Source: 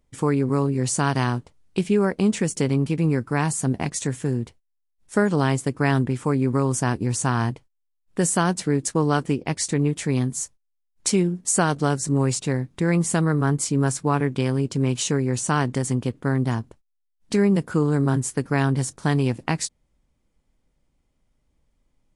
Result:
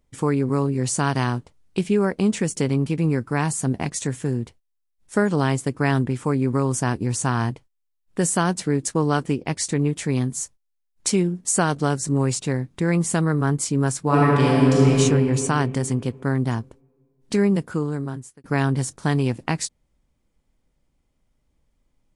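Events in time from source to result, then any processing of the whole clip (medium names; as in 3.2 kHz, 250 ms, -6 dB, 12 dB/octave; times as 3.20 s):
14.02–14.92 s: reverb throw, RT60 2.6 s, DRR -6 dB
17.46–18.44 s: fade out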